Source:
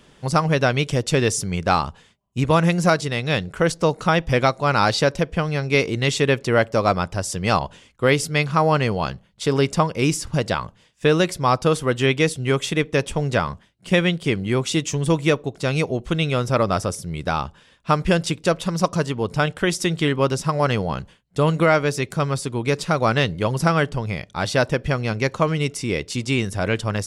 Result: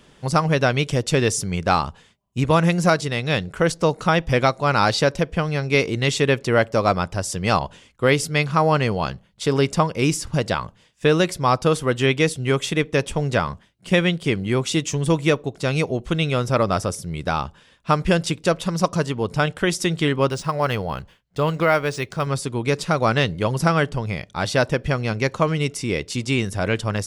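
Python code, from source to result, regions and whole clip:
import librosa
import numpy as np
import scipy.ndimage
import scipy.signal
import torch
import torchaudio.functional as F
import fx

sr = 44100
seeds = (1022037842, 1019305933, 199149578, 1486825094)

y = fx.chain(x, sr, fx.peak_eq(hz=220.0, db=-5.0, octaves=1.9),
    fx.resample_linear(factor=3), at=(20.29, 22.27))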